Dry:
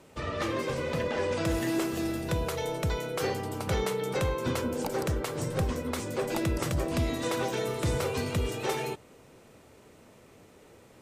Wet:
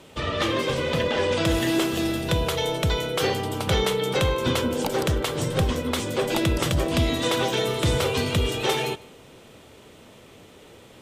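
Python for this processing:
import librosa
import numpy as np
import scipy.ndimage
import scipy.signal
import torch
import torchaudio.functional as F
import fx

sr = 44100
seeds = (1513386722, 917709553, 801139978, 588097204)

p1 = fx.peak_eq(x, sr, hz=3300.0, db=9.0, octaves=0.54)
p2 = p1 + fx.echo_single(p1, sr, ms=153, db=-23.0, dry=0)
y = p2 * librosa.db_to_amplitude(6.0)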